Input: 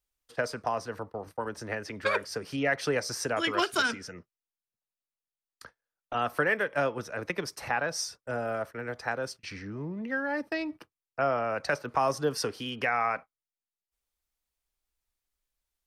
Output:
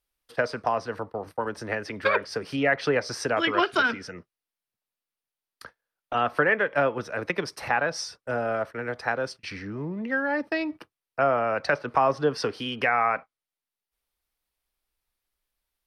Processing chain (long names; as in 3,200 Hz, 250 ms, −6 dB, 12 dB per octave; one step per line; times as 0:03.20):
low-shelf EQ 140 Hz −4 dB
treble cut that deepens with the level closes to 2,900 Hz, closed at −23 dBFS
parametric band 7,000 Hz −8.5 dB 0.54 octaves
level +5 dB